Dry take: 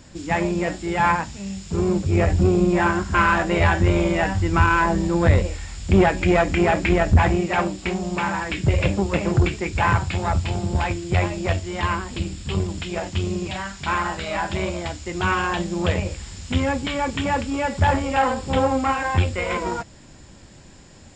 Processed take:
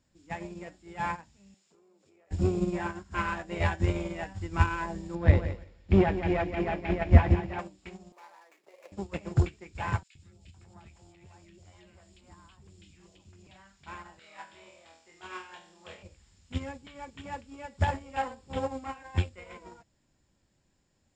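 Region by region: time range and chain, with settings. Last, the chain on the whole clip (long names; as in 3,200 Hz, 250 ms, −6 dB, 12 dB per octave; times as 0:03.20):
0:01.54–0:02.31: Chebyshev high-pass filter 430 Hz + downward compressor 12 to 1, threshold −34 dBFS
0:05.15–0:07.59: high-frequency loss of the air 180 metres + repeating echo 170 ms, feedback 31%, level −5 dB
0:08.12–0:08.92: running median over 15 samples + high-pass filter 460 Hz 24 dB per octave + parametric band 1,500 Hz −5.5 dB 0.25 octaves
0:10.03–0:13.47: high-shelf EQ 5,300 Hz +5 dB + downward compressor 12 to 1, threshold −23 dBFS + three-band delay without the direct sound highs, lows, mids 120/510 ms, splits 470/1,800 Hz
0:14.19–0:16.03: high-pass filter 680 Hz 6 dB per octave + notch filter 6,800 Hz, Q 27 + flutter between parallel walls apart 4.2 metres, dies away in 0.52 s
whole clip: dynamic equaliser 1,300 Hz, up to −4 dB, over −34 dBFS, Q 3.3; expander for the loud parts 2.5 to 1, over −27 dBFS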